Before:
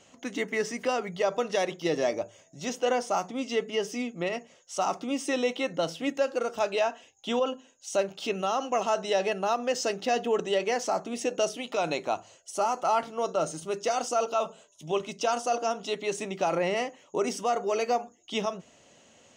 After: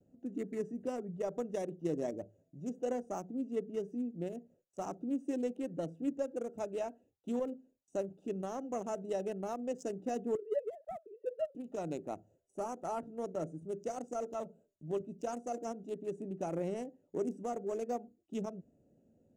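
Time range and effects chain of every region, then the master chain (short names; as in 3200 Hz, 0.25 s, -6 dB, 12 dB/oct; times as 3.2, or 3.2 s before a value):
10.35–11.55 sine-wave speech + BPF 200–2300 Hz
whole clip: Wiener smoothing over 41 samples; gate with hold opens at -59 dBFS; EQ curve 290 Hz 0 dB, 1100 Hz -12 dB, 4600 Hz -19 dB, 7400 Hz 0 dB; gain -3 dB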